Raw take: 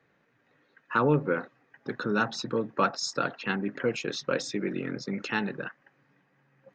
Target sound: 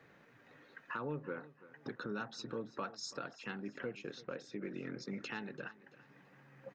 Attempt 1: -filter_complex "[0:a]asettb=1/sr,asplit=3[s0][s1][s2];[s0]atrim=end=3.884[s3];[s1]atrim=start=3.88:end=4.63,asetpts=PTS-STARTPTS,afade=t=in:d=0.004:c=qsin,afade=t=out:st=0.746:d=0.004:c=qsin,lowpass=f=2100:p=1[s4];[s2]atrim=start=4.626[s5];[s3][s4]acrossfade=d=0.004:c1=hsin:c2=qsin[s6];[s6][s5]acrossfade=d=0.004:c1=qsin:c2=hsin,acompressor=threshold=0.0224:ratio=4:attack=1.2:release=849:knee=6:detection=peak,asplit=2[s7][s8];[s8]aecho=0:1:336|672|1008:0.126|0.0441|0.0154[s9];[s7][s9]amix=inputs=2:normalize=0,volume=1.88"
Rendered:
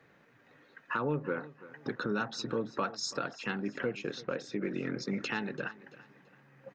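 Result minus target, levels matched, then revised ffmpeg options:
compression: peak gain reduction -8.5 dB
-filter_complex "[0:a]asettb=1/sr,asplit=3[s0][s1][s2];[s0]atrim=end=3.884[s3];[s1]atrim=start=3.88:end=4.63,asetpts=PTS-STARTPTS,afade=t=in:d=0.004:c=qsin,afade=t=out:st=0.746:d=0.004:c=qsin,lowpass=f=2100:p=1[s4];[s2]atrim=start=4.626[s5];[s3][s4]acrossfade=d=0.004:c1=hsin:c2=qsin[s6];[s6][s5]acrossfade=d=0.004:c1=qsin:c2=hsin,acompressor=threshold=0.00631:ratio=4:attack=1.2:release=849:knee=6:detection=peak,asplit=2[s7][s8];[s8]aecho=0:1:336|672|1008:0.126|0.0441|0.0154[s9];[s7][s9]amix=inputs=2:normalize=0,volume=1.88"

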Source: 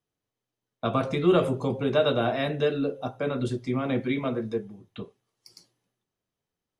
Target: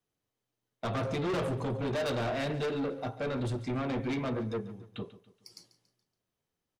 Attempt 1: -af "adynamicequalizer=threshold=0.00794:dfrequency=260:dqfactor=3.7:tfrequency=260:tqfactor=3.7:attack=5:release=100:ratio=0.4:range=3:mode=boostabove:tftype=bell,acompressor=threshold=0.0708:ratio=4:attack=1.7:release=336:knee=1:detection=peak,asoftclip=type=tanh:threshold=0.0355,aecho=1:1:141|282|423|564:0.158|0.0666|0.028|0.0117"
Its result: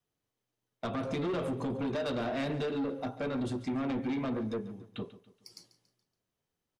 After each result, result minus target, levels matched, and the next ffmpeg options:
compression: peak gain reduction +9.5 dB; 125 Hz band -3.5 dB
-af "adynamicequalizer=threshold=0.00794:dfrequency=260:dqfactor=3.7:tfrequency=260:tqfactor=3.7:attack=5:release=100:ratio=0.4:range=3:mode=boostabove:tftype=bell,asoftclip=type=tanh:threshold=0.0355,aecho=1:1:141|282|423|564:0.158|0.0666|0.028|0.0117"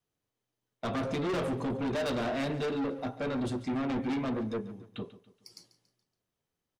125 Hz band -4.0 dB
-af "adynamicequalizer=threshold=0.00794:dfrequency=110:dqfactor=3.7:tfrequency=110:tqfactor=3.7:attack=5:release=100:ratio=0.4:range=3:mode=boostabove:tftype=bell,asoftclip=type=tanh:threshold=0.0355,aecho=1:1:141|282|423|564:0.158|0.0666|0.028|0.0117"

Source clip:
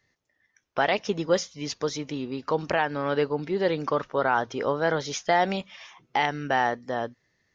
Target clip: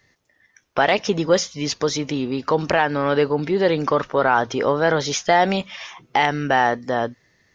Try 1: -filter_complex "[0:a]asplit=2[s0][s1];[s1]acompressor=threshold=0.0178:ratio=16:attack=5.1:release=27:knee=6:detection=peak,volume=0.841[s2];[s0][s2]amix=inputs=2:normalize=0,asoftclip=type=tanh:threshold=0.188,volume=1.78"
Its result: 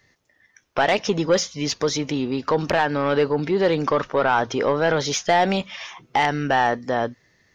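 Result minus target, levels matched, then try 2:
saturation: distortion +16 dB
-filter_complex "[0:a]asplit=2[s0][s1];[s1]acompressor=threshold=0.0178:ratio=16:attack=5.1:release=27:knee=6:detection=peak,volume=0.841[s2];[s0][s2]amix=inputs=2:normalize=0,asoftclip=type=tanh:threshold=0.596,volume=1.78"

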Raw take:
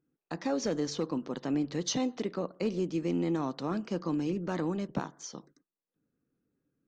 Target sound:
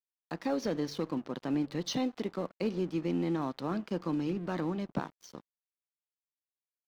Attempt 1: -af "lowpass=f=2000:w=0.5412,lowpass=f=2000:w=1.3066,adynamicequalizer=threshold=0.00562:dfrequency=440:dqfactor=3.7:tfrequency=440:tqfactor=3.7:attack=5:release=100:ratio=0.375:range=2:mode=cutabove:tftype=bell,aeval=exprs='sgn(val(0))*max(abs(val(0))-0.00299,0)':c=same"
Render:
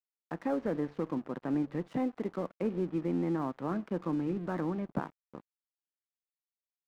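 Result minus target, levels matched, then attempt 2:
4 kHz band -15.5 dB
-af "lowpass=f=5300:w=0.5412,lowpass=f=5300:w=1.3066,adynamicequalizer=threshold=0.00562:dfrequency=440:dqfactor=3.7:tfrequency=440:tqfactor=3.7:attack=5:release=100:ratio=0.375:range=2:mode=cutabove:tftype=bell,aeval=exprs='sgn(val(0))*max(abs(val(0))-0.00299,0)':c=same"

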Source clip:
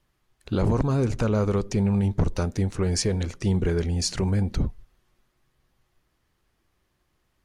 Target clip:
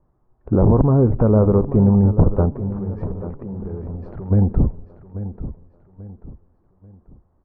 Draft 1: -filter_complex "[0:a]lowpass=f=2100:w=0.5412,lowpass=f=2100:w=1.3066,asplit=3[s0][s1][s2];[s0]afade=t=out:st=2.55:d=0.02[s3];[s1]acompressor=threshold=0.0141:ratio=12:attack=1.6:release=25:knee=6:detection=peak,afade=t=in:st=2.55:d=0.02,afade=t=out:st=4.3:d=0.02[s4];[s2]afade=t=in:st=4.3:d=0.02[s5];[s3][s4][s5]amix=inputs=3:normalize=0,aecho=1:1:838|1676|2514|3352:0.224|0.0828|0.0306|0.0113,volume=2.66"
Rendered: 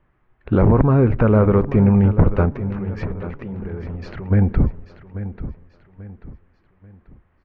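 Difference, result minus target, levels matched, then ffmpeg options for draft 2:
2 kHz band +15.0 dB
-filter_complex "[0:a]lowpass=f=1000:w=0.5412,lowpass=f=1000:w=1.3066,asplit=3[s0][s1][s2];[s0]afade=t=out:st=2.55:d=0.02[s3];[s1]acompressor=threshold=0.0141:ratio=12:attack=1.6:release=25:knee=6:detection=peak,afade=t=in:st=2.55:d=0.02,afade=t=out:st=4.3:d=0.02[s4];[s2]afade=t=in:st=4.3:d=0.02[s5];[s3][s4][s5]amix=inputs=3:normalize=0,aecho=1:1:838|1676|2514|3352:0.224|0.0828|0.0306|0.0113,volume=2.66"

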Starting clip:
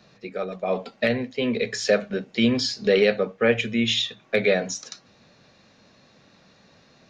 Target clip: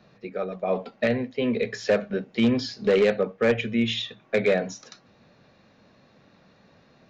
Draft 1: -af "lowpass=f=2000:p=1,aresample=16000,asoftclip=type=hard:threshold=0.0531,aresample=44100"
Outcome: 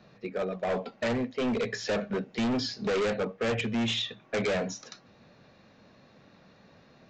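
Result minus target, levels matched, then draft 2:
hard clipper: distortion +14 dB
-af "lowpass=f=2000:p=1,aresample=16000,asoftclip=type=hard:threshold=0.2,aresample=44100"

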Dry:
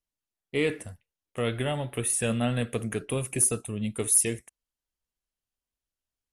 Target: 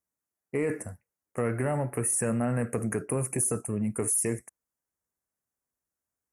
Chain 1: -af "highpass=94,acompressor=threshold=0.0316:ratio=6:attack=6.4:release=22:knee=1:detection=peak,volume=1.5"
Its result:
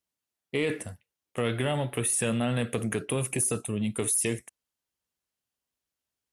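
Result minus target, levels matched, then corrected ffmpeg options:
4 kHz band +20.0 dB
-af "highpass=94,acompressor=threshold=0.0316:ratio=6:attack=6.4:release=22:knee=1:detection=peak,asuperstop=centerf=3500:order=4:qfactor=0.82,volume=1.5"

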